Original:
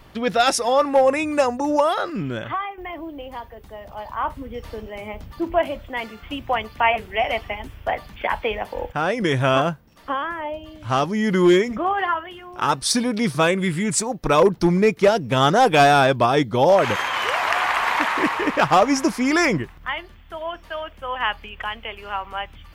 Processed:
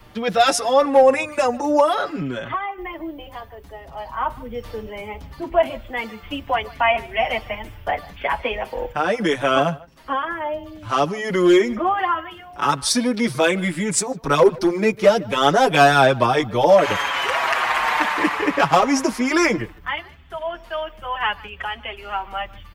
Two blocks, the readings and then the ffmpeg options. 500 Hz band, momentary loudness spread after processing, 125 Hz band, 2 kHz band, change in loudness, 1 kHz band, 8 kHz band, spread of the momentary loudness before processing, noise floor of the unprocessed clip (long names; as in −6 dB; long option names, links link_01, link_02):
+1.5 dB, 16 LU, −3.0 dB, +1.0 dB, +0.5 dB, +0.5 dB, +1.0 dB, 17 LU, −46 dBFS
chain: -filter_complex "[0:a]acrossover=split=250|780|3600[link_01][link_02][link_03][link_04];[link_01]asoftclip=type=tanh:threshold=-28dB[link_05];[link_05][link_02][link_03][link_04]amix=inputs=4:normalize=0,asplit=2[link_06][link_07];[link_07]adelay=150,highpass=300,lowpass=3400,asoftclip=type=hard:threshold=-12dB,volume=-21dB[link_08];[link_06][link_08]amix=inputs=2:normalize=0,asplit=2[link_09][link_10];[link_10]adelay=6.1,afreqshift=-0.67[link_11];[link_09][link_11]amix=inputs=2:normalize=1,volume=4dB"